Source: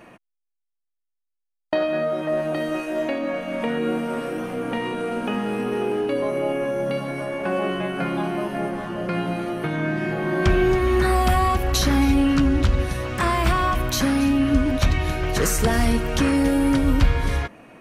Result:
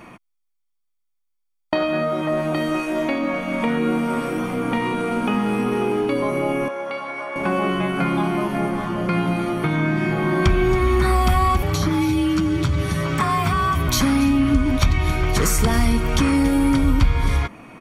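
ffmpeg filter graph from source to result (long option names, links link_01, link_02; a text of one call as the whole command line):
ffmpeg -i in.wav -filter_complex "[0:a]asettb=1/sr,asplit=3[link_01][link_02][link_03];[link_01]atrim=end=6.684[link_04];[link_02]atrim=start=6.68:end=7.36,asetpts=PTS-STARTPTS,afade=type=in:duration=0.004:curve=qsin,afade=type=out:start_time=0.676:duration=0.004:curve=qsin,highpass=670,aemphasis=mode=reproduction:type=75fm[link_05];[link_03]atrim=start=7.356[link_06];[link_04][link_05]acrossfade=duration=0.004:curve1=hsin:curve2=qsin[link_07];[link_07][link_06]acrossfade=duration=0.004:curve1=qsin:curve2=hsin,asettb=1/sr,asplit=3[link_08][link_09][link_10];[link_08]atrim=end=11.624[link_11];[link_09]atrim=start=11.62:end=13.88,asetpts=PTS-STARTPTS,afade=type=in:duration=0.004:curve=qsin,afade=type=out:start_time=2.256:duration=0.004:curve=qsin,aecho=1:1:7.5:0.5,atrim=end_sample=99666,acrossover=split=1800|6700[link_12][link_13][link_14];[link_12]acompressor=threshold=-22dB:ratio=4[link_15];[link_13]acompressor=threshold=-37dB:ratio=4[link_16];[link_14]acompressor=threshold=-45dB:ratio=4[link_17];[link_15][link_16][link_17]amix=inputs=3:normalize=0,afreqshift=37[link_18];[link_10]atrim=start=13.876[link_19];[link_11][link_18]acrossfade=duration=0.004:curve1=hsin:curve2=qsin[link_20];[link_20][link_19]acrossfade=duration=0.004:curve1=qsin:curve2=hsin,aecho=1:1:0.9:0.4,acompressor=threshold=-21dB:ratio=2,volume=4.5dB" out.wav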